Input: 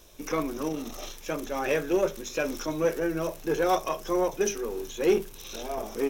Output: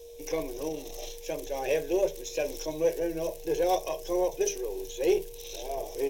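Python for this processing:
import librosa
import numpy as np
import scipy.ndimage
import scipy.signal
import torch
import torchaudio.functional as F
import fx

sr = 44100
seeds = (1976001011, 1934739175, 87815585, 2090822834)

y = x + 10.0 ** (-44.0 / 20.0) * np.sin(2.0 * np.pi * 470.0 * np.arange(len(x)) / sr)
y = fx.fixed_phaser(y, sr, hz=540.0, stages=4)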